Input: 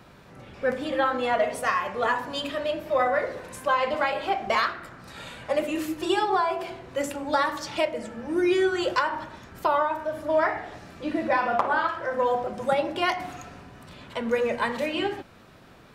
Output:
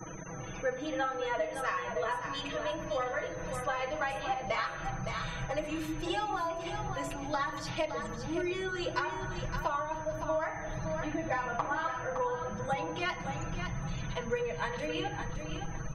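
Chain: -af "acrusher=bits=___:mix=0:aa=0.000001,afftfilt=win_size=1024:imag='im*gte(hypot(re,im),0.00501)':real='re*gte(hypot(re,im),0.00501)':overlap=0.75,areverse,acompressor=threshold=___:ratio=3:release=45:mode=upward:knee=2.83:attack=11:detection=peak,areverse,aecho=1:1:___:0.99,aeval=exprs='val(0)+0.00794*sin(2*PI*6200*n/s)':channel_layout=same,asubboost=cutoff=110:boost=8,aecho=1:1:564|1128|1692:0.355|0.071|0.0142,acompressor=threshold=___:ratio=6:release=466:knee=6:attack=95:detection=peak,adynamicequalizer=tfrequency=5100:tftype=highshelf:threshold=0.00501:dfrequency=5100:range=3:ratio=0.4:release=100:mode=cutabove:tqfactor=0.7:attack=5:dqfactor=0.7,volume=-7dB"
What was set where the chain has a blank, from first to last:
7, -32dB, 6.2, -25dB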